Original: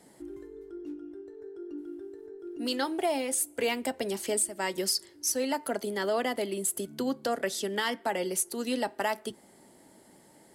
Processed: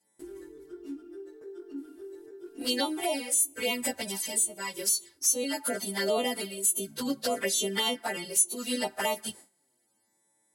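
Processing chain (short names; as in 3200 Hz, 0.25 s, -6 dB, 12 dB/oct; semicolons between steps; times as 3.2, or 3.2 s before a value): frequency quantiser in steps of 2 st; gate with hold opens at -40 dBFS; vocal rider within 3 dB 0.5 s; envelope flanger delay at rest 9.3 ms, full sweep at -22 dBFS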